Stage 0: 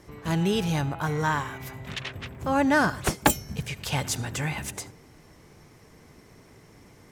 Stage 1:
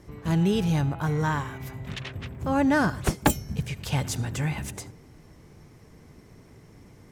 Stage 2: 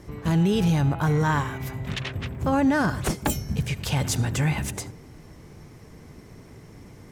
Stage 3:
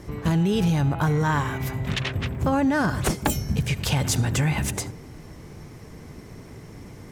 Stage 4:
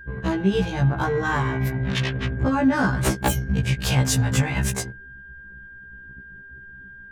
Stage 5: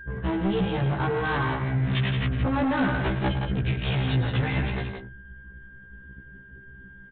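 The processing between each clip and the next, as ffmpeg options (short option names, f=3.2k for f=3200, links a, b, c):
-af "lowshelf=f=350:g=8,volume=-3.5dB"
-af "alimiter=limit=-19dB:level=0:latency=1:release=17,volume=5dB"
-af "acompressor=threshold=-22dB:ratio=6,volume=4dB"
-af "aeval=exprs='val(0)+0.0178*sin(2*PI*1600*n/s)':c=same,anlmdn=39.8,afftfilt=real='re*1.73*eq(mod(b,3),0)':imag='im*1.73*eq(mod(b,3),0)':win_size=2048:overlap=0.75,volume=4dB"
-af "aresample=8000,asoftclip=type=tanh:threshold=-22dB,aresample=44100,aecho=1:1:107.9|169.1:0.316|0.501"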